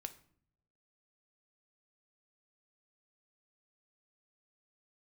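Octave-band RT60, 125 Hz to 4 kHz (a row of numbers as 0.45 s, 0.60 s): 1.1 s, 0.95 s, 0.70 s, 0.55 s, 0.45 s, 0.40 s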